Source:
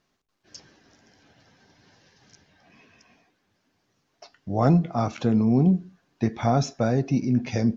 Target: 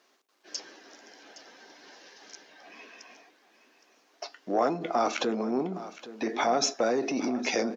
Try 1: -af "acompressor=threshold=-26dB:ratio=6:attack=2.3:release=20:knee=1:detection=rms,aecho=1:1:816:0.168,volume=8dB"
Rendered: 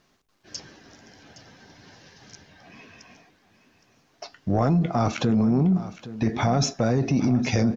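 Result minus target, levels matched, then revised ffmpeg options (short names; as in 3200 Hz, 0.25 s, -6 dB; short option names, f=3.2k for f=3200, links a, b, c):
250 Hz band +3.5 dB
-af "acompressor=threshold=-26dB:ratio=6:attack=2.3:release=20:knee=1:detection=rms,highpass=f=310:w=0.5412,highpass=f=310:w=1.3066,aecho=1:1:816:0.168,volume=8dB"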